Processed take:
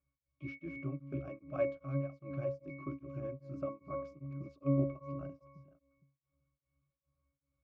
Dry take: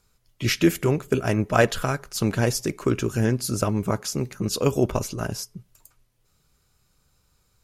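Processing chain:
delay that plays each chunk backwards 305 ms, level −14 dB
low-pass filter 5,100 Hz
low-shelf EQ 150 Hz −11.5 dB
resonances in every octave C#, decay 0.63 s
tremolo along a rectified sine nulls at 2.5 Hz
level +8 dB

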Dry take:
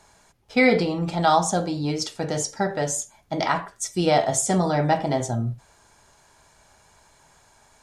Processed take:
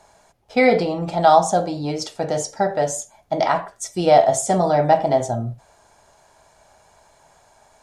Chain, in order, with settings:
parametric band 660 Hz +9.5 dB 0.88 octaves
level −1 dB

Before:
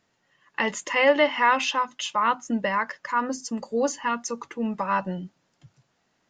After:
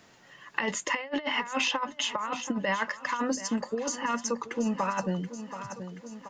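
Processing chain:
compressor whose output falls as the input rises −26 dBFS, ratio −0.5
on a send: repeating echo 729 ms, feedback 45%, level −15 dB
on the sum: multiband upward and downward compressor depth 40%
level −2 dB

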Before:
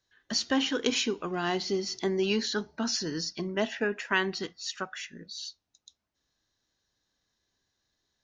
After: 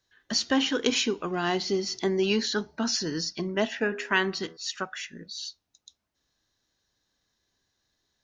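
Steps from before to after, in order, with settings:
0:03.67–0:04.57: hum removal 81.67 Hz, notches 22
level +2.5 dB

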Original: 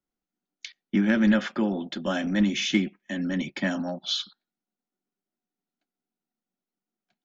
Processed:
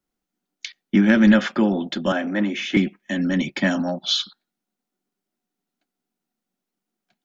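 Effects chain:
0:02.12–0:02.77: three-way crossover with the lows and the highs turned down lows −23 dB, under 240 Hz, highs −14 dB, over 2,400 Hz
level +6.5 dB

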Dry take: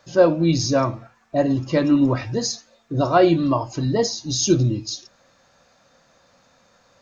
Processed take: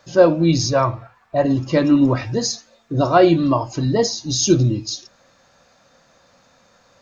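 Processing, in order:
0:00.69–0:01.45: graphic EQ with 15 bands 100 Hz +4 dB, 250 Hz −11 dB, 1,000 Hz +4 dB, 6,300 Hz −9 dB
level +2.5 dB

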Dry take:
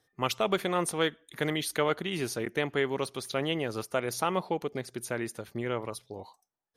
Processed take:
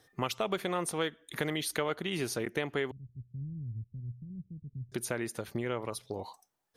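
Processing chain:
0:02.91–0:04.92: inverse Chebyshev low-pass filter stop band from 750 Hz, stop band 80 dB
downward compressor 2.5 to 1, threshold −43 dBFS, peak gain reduction 14 dB
level +8 dB

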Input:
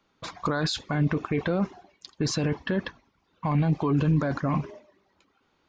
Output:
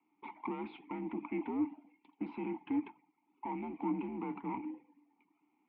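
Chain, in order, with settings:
asymmetric clip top −31.5 dBFS
single-sideband voice off tune −100 Hz 270–3,000 Hz
formant filter u
level +5 dB

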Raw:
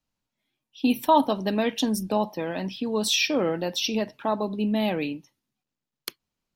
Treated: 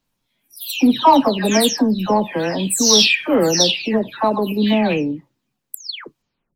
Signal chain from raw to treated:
every frequency bin delayed by itself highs early, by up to 337 ms
dynamic equaliser 6,000 Hz, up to +7 dB, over −44 dBFS, Q 1.1
in parallel at −5 dB: soft clipping −18.5 dBFS, distortion −14 dB
on the sum: level +6 dB

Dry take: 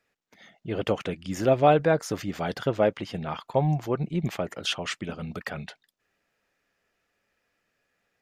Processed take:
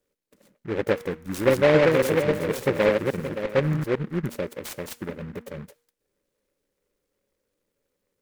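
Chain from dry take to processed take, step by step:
0:01.17–0:03.84: feedback delay that plays each chunk backwards 286 ms, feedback 42%, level −2.5 dB
linear-phase brick-wall band-stop 610–6,000 Hz
parametric band 130 Hz −8 dB 2.7 octaves
hum removal 236.9 Hz, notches 34
short delay modulated by noise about 1,300 Hz, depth 0.11 ms
level +6.5 dB

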